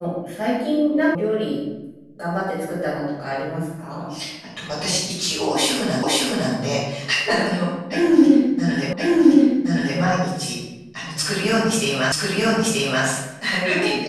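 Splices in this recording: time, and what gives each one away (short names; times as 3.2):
1.15 sound cut off
6.03 repeat of the last 0.51 s
8.93 repeat of the last 1.07 s
12.12 repeat of the last 0.93 s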